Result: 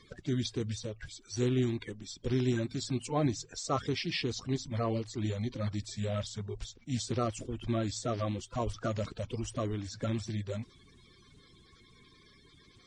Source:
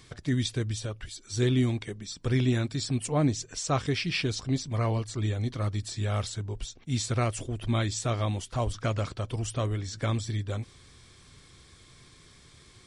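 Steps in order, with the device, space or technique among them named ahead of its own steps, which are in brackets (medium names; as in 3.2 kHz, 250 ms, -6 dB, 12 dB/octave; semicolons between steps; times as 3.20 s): clip after many re-uploads (low-pass 7.6 kHz 24 dB/octave; coarse spectral quantiser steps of 30 dB); trim -4 dB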